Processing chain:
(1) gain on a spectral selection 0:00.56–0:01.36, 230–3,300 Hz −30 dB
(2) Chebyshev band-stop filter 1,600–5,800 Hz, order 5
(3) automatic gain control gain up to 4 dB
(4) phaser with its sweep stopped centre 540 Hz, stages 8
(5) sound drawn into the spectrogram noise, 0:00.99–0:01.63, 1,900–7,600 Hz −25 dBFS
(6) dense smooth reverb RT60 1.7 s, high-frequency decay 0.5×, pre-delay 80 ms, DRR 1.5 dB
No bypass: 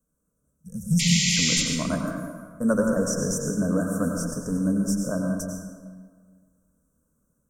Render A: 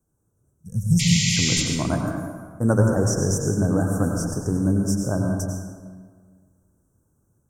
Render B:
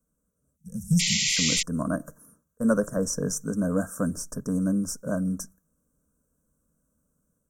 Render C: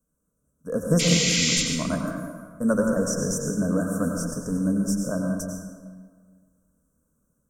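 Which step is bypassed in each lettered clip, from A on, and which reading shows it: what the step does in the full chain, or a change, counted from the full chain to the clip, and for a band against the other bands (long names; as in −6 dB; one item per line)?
4, 125 Hz band +5.5 dB
6, change in momentary loudness spread −5 LU
1, change in momentary loudness spread −2 LU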